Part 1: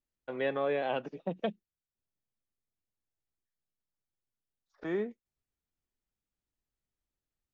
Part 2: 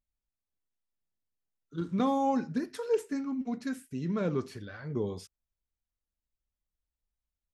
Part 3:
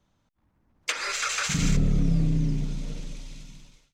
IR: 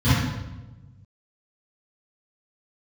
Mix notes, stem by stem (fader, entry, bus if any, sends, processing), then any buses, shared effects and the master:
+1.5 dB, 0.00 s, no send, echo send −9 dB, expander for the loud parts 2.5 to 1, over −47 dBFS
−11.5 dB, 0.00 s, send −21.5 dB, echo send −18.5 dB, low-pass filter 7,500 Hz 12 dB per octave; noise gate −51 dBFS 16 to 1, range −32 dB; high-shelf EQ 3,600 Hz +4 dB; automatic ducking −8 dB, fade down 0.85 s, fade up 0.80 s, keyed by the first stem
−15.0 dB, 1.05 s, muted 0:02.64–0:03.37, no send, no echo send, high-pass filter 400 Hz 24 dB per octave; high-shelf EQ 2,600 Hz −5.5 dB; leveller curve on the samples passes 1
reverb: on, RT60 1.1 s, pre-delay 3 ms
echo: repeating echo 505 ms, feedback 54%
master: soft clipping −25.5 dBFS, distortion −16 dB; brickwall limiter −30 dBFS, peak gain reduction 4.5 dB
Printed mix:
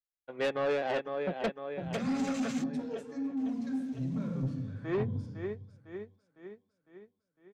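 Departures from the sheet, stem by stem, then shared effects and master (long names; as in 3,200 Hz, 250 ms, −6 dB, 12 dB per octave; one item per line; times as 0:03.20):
stem 1 +1.5 dB → +8.5 dB
master: missing brickwall limiter −30 dBFS, peak gain reduction 4.5 dB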